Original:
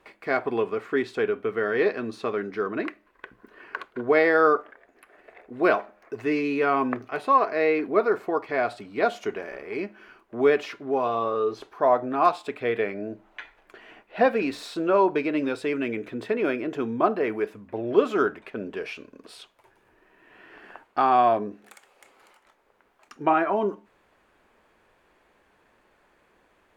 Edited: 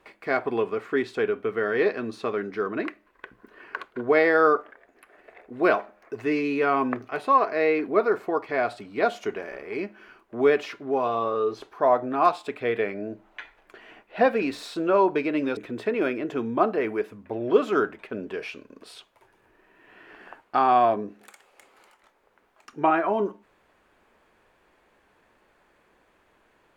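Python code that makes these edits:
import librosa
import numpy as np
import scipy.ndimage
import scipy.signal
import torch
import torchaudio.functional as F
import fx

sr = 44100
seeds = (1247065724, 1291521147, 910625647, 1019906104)

y = fx.edit(x, sr, fx.cut(start_s=15.57, length_s=0.43), tone=tone)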